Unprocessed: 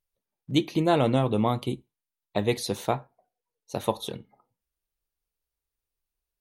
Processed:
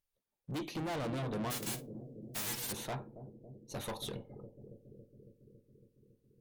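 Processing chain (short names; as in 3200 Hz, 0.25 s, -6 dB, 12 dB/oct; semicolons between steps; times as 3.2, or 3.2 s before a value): 1.5–2.71 spectral whitening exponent 0.1; tube stage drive 33 dB, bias 0.2; analogue delay 0.277 s, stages 1024, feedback 76%, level -9 dB; gain -2.5 dB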